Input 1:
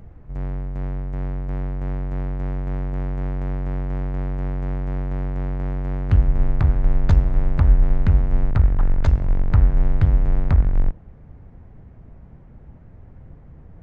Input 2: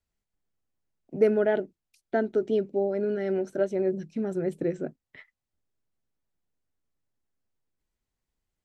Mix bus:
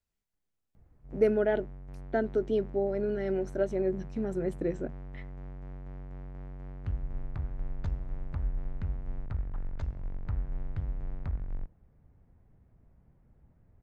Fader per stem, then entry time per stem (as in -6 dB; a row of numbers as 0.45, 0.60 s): -18.0, -3.0 dB; 0.75, 0.00 s